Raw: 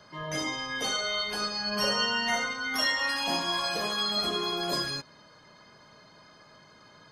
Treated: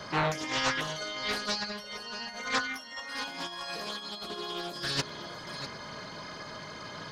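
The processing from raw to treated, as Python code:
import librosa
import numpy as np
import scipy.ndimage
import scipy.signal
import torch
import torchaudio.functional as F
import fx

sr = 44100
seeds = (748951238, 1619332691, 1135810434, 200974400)

y = fx.over_compress(x, sr, threshold_db=-37.0, ratio=-0.5)
y = y + 10.0 ** (-10.5 / 20.0) * np.pad(y, (int(646 * sr / 1000.0), 0))[:len(y)]
y = fx.doppler_dist(y, sr, depth_ms=0.44)
y = F.gain(torch.from_numpy(y), 4.0).numpy()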